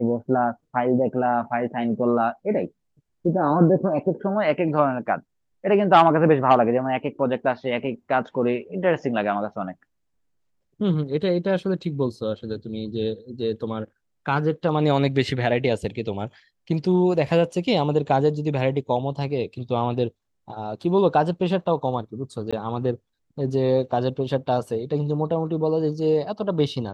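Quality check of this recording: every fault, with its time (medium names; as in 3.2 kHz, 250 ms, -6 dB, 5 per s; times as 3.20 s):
22.51–22.53 s: dropout 16 ms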